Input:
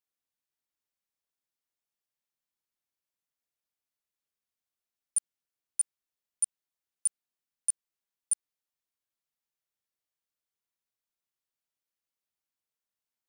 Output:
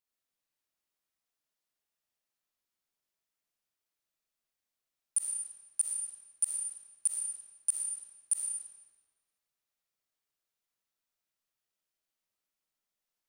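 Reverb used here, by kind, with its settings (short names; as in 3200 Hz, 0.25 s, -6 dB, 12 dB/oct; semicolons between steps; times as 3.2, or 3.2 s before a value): digital reverb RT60 1.4 s, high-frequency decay 0.9×, pre-delay 20 ms, DRR -2.5 dB; gain -1.5 dB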